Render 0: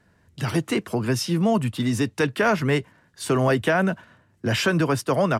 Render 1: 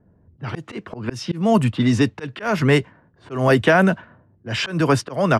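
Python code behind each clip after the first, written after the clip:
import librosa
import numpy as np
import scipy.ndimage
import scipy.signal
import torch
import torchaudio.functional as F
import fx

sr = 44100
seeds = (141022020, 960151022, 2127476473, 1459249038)

y = fx.env_lowpass(x, sr, base_hz=540.0, full_db=-16.0)
y = fx.auto_swell(y, sr, attack_ms=236.0)
y = y * librosa.db_to_amplitude(6.0)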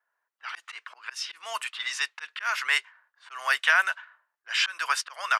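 y = scipy.signal.sosfilt(scipy.signal.butter(4, 1200.0, 'highpass', fs=sr, output='sos'), x)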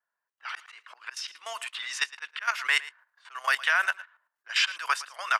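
y = fx.level_steps(x, sr, step_db=13)
y = y + 10.0 ** (-18.0 / 20.0) * np.pad(y, (int(112 * sr / 1000.0), 0))[:len(y)]
y = y * librosa.db_to_amplitude(3.5)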